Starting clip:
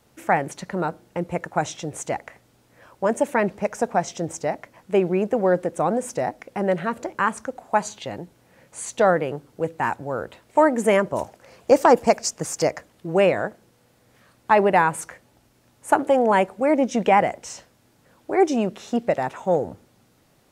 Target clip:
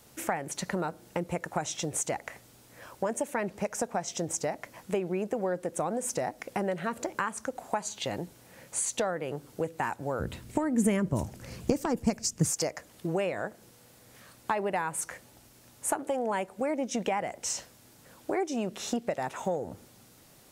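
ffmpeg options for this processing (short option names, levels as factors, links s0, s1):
-filter_complex "[0:a]highshelf=f=4400:g=9.5,acompressor=threshold=0.0355:ratio=6,asplit=3[s0][s1][s2];[s0]afade=t=out:st=10.19:d=0.02[s3];[s1]asubboost=boost=7:cutoff=230,afade=t=in:st=10.19:d=0.02,afade=t=out:st=12.49:d=0.02[s4];[s2]afade=t=in:st=12.49:d=0.02[s5];[s3][s4][s5]amix=inputs=3:normalize=0,volume=1.12"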